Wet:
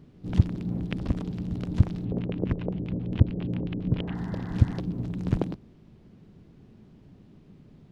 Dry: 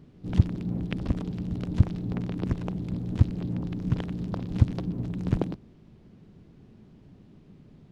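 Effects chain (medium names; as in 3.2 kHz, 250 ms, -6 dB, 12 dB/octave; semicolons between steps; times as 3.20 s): 4.02–4.77 s: spectral replace 660–2100 Hz before; 2.05–4.15 s: LFO low-pass square 7.4 Hz 520–2900 Hz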